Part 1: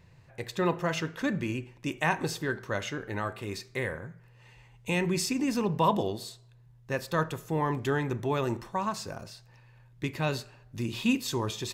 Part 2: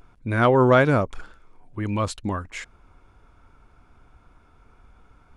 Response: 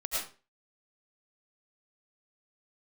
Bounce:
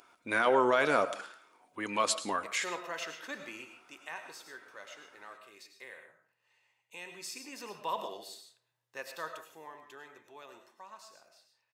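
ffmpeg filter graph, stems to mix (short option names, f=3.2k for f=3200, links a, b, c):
-filter_complex "[0:a]tiltshelf=f=970:g=-3.5,adelay=2050,volume=-3dB,afade=t=out:st=3.59:d=0.38:silence=0.398107,afade=t=in:st=7.1:d=0.78:silence=0.446684,afade=t=out:st=9.03:d=0.72:silence=0.316228,asplit=2[a][b];[b]volume=-9.5dB[c];[1:a]highshelf=f=2.1k:g=8.5,alimiter=limit=-12.5dB:level=0:latency=1:release=35,flanger=delay=3.1:depth=1.7:regen=-66:speed=0.7:shape=triangular,volume=0.5dB,asplit=2[d][e];[e]volume=-16.5dB[f];[2:a]atrim=start_sample=2205[g];[c][f]amix=inputs=2:normalize=0[h];[h][g]afir=irnorm=-1:irlink=0[i];[a][d][i]amix=inputs=3:normalize=0,highpass=430"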